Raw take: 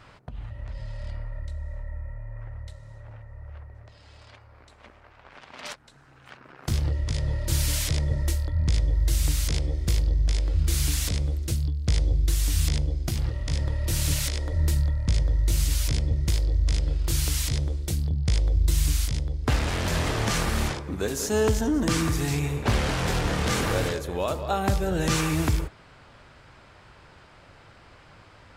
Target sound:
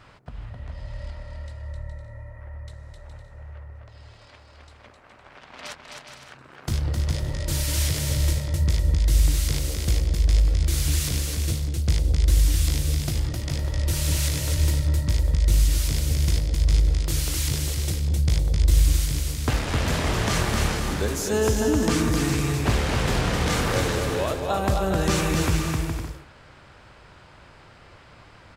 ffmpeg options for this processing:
-af "aecho=1:1:260|416|509.6|565.8|599.5:0.631|0.398|0.251|0.158|0.1"

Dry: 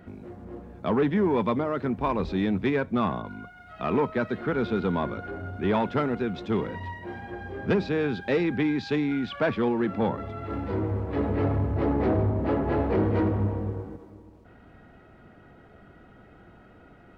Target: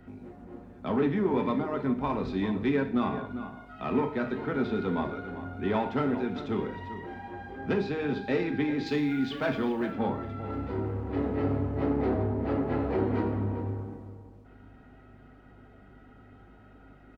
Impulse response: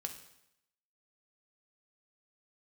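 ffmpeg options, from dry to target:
-filter_complex "[0:a]aeval=exprs='val(0)+0.00282*(sin(2*PI*50*n/s)+sin(2*PI*2*50*n/s)/2+sin(2*PI*3*50*n/s)/3+sin(2*PI*4*50*n/s)/4+sin(2*PI*5*50*n/s)/5)':c=same,acrossover=split=130|1800[s0][s1][s2];[s0]alimiter=level_in=2.24:limit=0.0631:level=0:latency=1,volume=0.447[s3];[s3][s1][s2]amix=inputs=3:normalize=0,asettb=1/sr,asplit=3[s4][s5][s6];[s4]atrim=end=8.864[s7];[s5]atrim=start=8.86:end=9.91,asetpts=PTS-STARTPTS,afade=t=in:d=0.004:c=qsin,afade=t=out:st=1.046:d=0.004:c=qsin,aemphasis=mode=production:type=50fm[s8];[s6]atrim=start=9.906[s9];[s7][s8]acrossfade=d=0.004:c1=hsin:c2=qsin[s10];[s10][s9]acrossfade=d=0.004:c1=qsin:c2=hsin,asplit=2[s11][s12];[s12]adelay=396.5,volume=0.251,highshelf=f=4000:g=-8.92[s13];[s11][s13]amix=inputs=2:normalize=0[s14];[1:a]atrim=start_sample=2205,asetrate=70560,aresample=44100[s15];[s14][s15]afir=irnorm=-1:irlink=0,volume=1.26"

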